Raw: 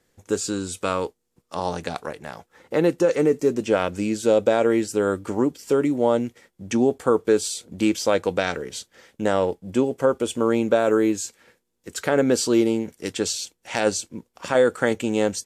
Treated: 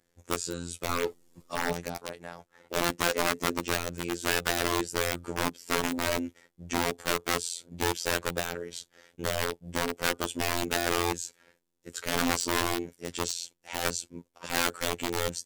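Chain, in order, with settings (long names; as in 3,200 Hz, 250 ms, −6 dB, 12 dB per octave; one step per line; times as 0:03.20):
wrap-around overflow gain 15 dB
phases set to zero 86.1 Hz
0:00.89–0:01.73: power curve on the samples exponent 0.7
level −4.5 dB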